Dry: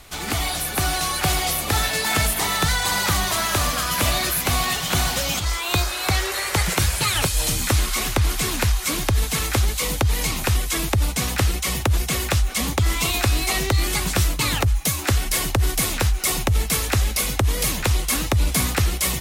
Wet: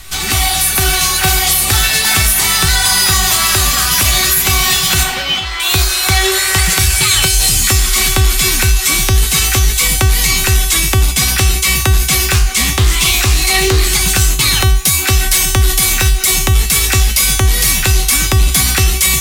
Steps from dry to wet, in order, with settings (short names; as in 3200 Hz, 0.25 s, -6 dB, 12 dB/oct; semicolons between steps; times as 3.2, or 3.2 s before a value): bell 500 Hz -11 dB 2.6 oct; soft clip -14.5 dBFS, distortion -20 dB; 5.03–5.6 three-band isolator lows -12 dB, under 200 Hz, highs -22 dB, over 3700 Hz; resonator 380 Hz, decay 0.51 s, mix 90%; maximiser +31 dB; 12.34–14.01 Doppler distortion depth 0.24 ms; gain -1 dB